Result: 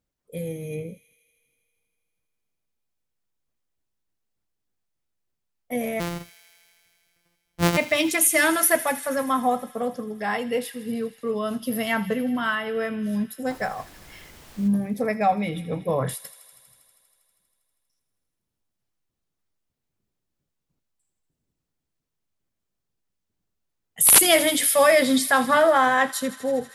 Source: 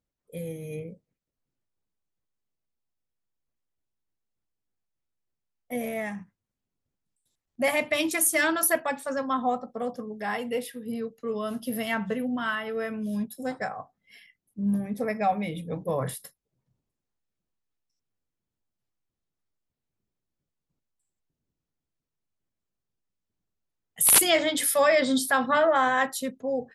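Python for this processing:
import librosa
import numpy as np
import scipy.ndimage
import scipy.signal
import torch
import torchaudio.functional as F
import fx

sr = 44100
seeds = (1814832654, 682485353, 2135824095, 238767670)

y = fx.sample_sort(x, sr, block=256, at=(5.99, 7.76), fade=0.02)
y = fx.dmg_noise_colour(y, sr, seeds[0], colour='pink', level_db=-52.0, at=(13.49, 14.67), fade=0.02)
y = fx.echo_wet_highpass(y, sr, ms=80, feedback_pct=82, hz=2500.0, wet_db=-14)
y = y * librosa.db_to_amplitude(4.0)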